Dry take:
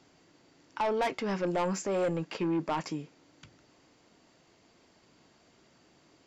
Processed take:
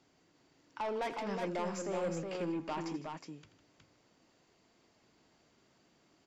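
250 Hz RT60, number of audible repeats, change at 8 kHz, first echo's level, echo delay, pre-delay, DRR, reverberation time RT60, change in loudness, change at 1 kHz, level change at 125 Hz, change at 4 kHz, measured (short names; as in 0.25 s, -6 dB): none, 3, -6.0 dB, -12.5 dB, 83 ms, none, none, none, -6.5 dB, -6.0 dB, -7.0 dB, -6.0 dB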